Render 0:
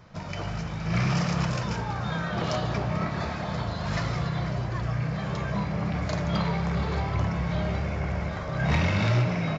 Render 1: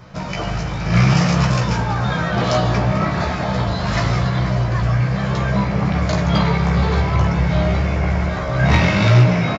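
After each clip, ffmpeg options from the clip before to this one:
ffmpeg -i in.wav -filter_complex "[0:a]asplit=2[link_01][link_02];[link_02]adelay=16,volume=-4dB[link_03];[link_01][link_03]amix=inputs=2:normalize=0,volume=8.5dB" out.wav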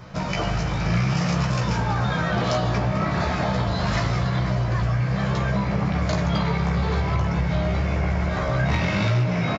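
ffmpeg -i in.wav -af "acompressor=threshold=-19dB:ratio=6" out.wav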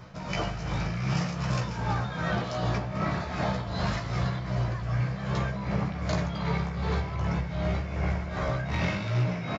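ffmpeg -i in.wav -af "tremolo=f=2.6:d=0.59,volume=-4dB" out.wav

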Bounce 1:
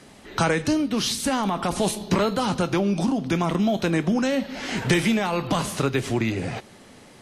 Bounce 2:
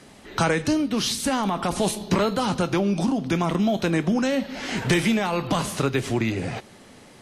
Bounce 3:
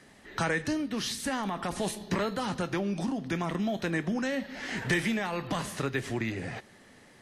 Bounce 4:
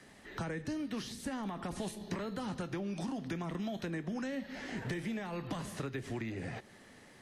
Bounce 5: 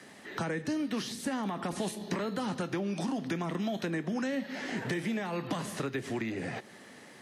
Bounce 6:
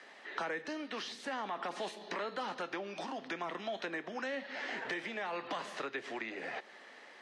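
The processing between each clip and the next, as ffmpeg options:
ffmpeg -i in.wav -af "asoftclip=type=hard:threshold=-11dB" out.wav
ffmpeg -i in.wav -af "equalizer=frequency=1800:width_type=o:width=0.32:gain=9,volume=-8.5dB" out.wav
ffmpeg -i in.wav -filter_complex "[0:a]acrossover=split=380|810[link_01][link_02][link_03];[link_01]acompressor=threshold=-36dB:ratio=4[link_04];[link_02]acompressor=threshold=-46dB:ratio=4[link_05];[link_03]acompressor=threshold=-45dB:ratio=4[link_06];[link_04][link_05][link_06]amix=inputs=3:normalize=0,volume=-1.5dB" out.wav
ffmpeg -i in.wav -af "highpass=160,volume=6dB" out.wav
ffmpeg -i in.wav -af "highpass=550,lowpass=4100" out.wav

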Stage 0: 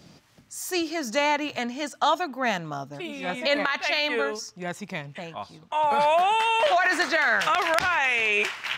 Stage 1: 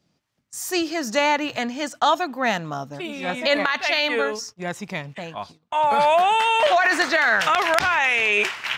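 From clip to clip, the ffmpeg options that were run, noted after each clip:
ffmpeg -i in.wav -af "agate=range=-21dB:threshold=-42dB:ratio=16:detection=peak,volume=3.5dB" out.wav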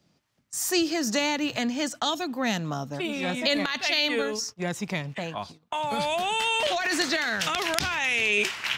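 ffmpeg -i in.wav -filter_complex "[0:a]acrossover=split=360|3000[link_01][link_02][link_03];[link_02]acompressor=threshold=-33dB:ratio=5[link_04];[link_01][link_04][link_03]amix=inputs=3:normalize=0,volume=2dB" out.wav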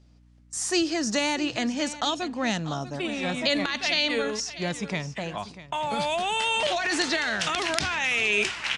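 ffmpeg -i in.wav -af "aeval=exprs='val(0)+0.00178*(sin(2*PI*60*n/s)+sin(2*PI*2*60*n/s)/2+sin(2*PI*3*60*n/s)/3+sin(2*PI*4*60*n/s)/4+sin(2*PI*5*60*n/s)/5)':channel_layout=same,aecho=1:1:644:0.178,aresample=22050,aresample=44100" out.wav

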